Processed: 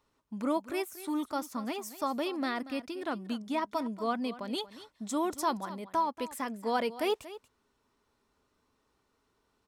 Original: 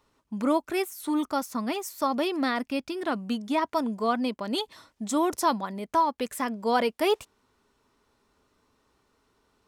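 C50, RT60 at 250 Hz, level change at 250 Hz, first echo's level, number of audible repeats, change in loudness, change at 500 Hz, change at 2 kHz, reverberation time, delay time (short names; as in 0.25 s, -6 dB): none, none, -6.0 dB, -15.5 dB, 1, -6.0 dB, -6.0 dB, -6.0 dB, none, 0.234 s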